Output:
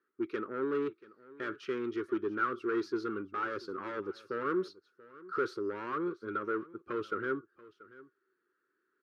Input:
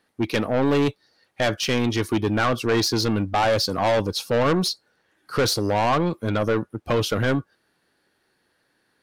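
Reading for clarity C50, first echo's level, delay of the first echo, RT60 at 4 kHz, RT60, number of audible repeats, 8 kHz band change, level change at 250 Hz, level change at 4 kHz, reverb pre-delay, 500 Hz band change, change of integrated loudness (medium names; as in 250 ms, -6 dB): no reverb, -20.0 dB, 684 ms, no reverb, no reverb, 1, under -30 dB, -12.5 dB, -27.0 dB, no reverb, -12.0 dB, -13.5 dB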